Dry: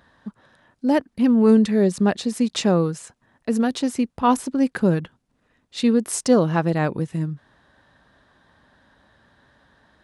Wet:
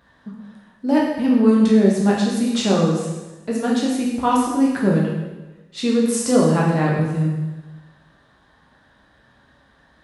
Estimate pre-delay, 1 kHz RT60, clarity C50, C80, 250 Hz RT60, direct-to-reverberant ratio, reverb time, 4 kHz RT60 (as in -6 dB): 8 ms, 1.1 s, 1.5 dB, 4.0 dB, 1.2 s, -4.0 dB, 1.2 s, 1.1 s